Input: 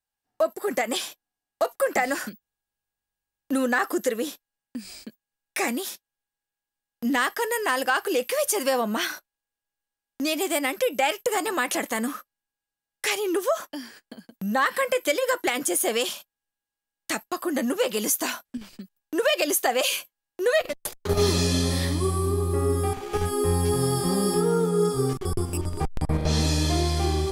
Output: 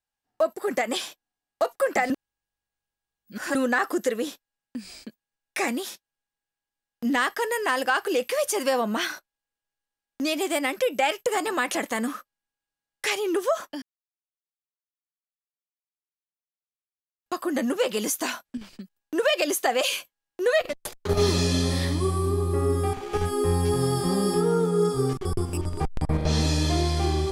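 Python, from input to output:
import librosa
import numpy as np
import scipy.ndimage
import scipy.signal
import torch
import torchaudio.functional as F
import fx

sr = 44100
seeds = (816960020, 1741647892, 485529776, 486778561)

y = fx.edit(x, sr, fx.reverse_span(start_s=2.1, length_s=1.45),
    fx.silence(start_s=13.82, length_s=3.44), tone=tone)
y = fx.high_shelf(y, sr, hz=11000.0, db=-10.5)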